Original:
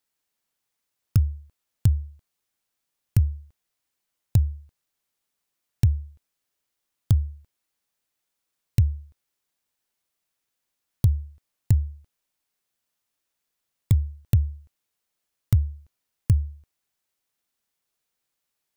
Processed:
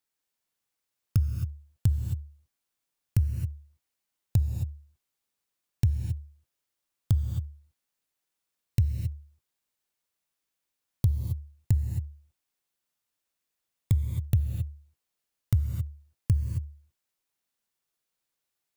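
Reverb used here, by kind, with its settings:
reverb whose tail is shaped and stops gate 290 ms rising, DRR 5 dB
level −4.5 dB

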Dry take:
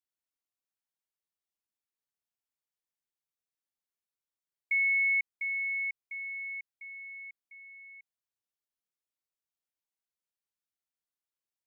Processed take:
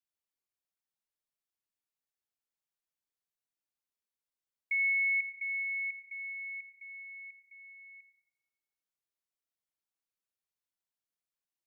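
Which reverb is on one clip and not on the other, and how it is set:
comb and all-pass reverb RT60 1.8 s, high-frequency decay 0.4×, pre-delay 20 ms, DRR 9 dB
level −3 dB

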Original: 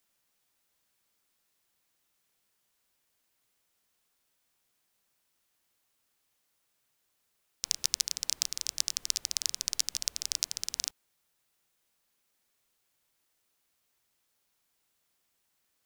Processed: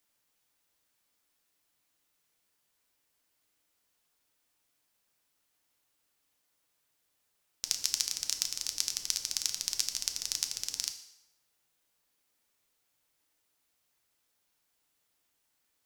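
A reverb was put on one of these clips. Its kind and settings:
feedback delay network reverb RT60 0.85 s, low-frequency decay 0.75×, high-frequency decay 0.9×, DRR 6 dB
level −1.5 dB

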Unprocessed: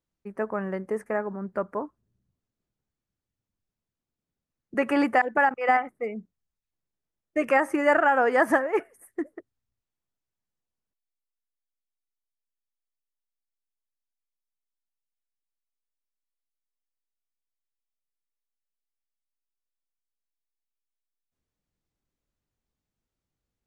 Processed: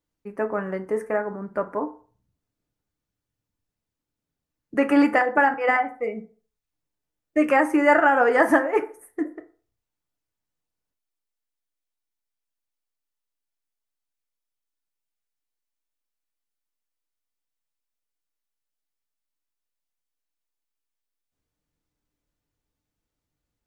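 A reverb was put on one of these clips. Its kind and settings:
feedback delay network reverb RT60 0.41 s, low-frequency decay 0.8×, high-frequency decay 0.6×, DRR 5.5 dB
level +2 dB

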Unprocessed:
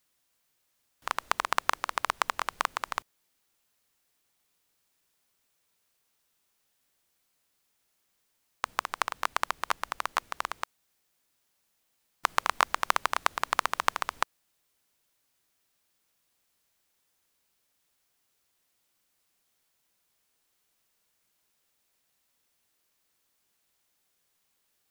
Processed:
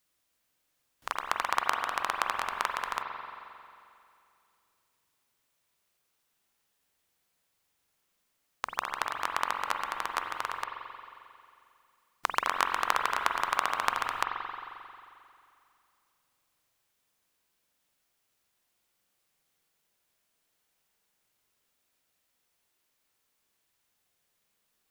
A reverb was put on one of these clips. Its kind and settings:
spring reverb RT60 2.5 s, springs 44 ms, chirp 65 ms, DRR 2 dB
level −2.5 dB

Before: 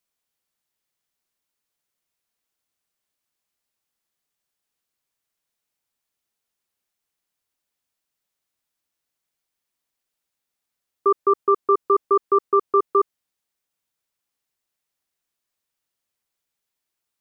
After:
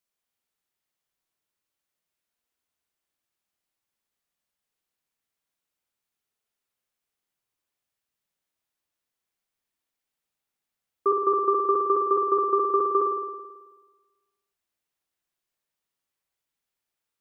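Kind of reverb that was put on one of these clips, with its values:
spring reverb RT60 1.3 s, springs 54 ms, chirp 45 ms, DRR 1 dB
level −4.5 dB

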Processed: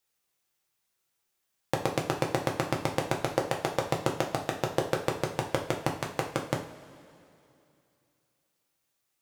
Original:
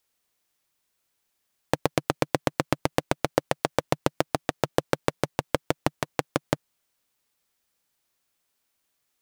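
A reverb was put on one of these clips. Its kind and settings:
coupled-rooms reverb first 0.37 s, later 2.8 s, from −18 dB, DRR 0 dB
level −5.5 dB

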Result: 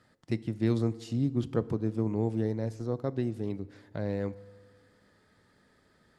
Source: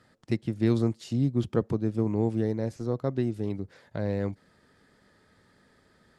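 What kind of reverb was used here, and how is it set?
feedback delay network reverb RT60 1.6 s, low-frequency decay 1×, high-frequency decay 0.6×, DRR 16.5 dB
level −3 dB

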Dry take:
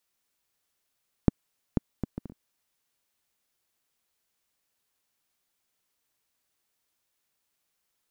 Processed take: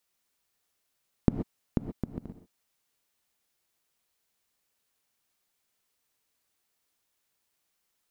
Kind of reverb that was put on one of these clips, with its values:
reverb whose tail is shaped and stops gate 150 ms rising, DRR 7.5 dB

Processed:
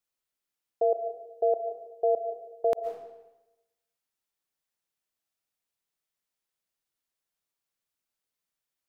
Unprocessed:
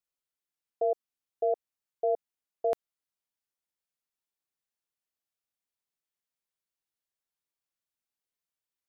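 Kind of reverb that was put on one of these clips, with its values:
comb and all-pass reverb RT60 1 s, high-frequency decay 0.9×, pre-delay 95 ms, DRR 7.5 dB
level +3 dB

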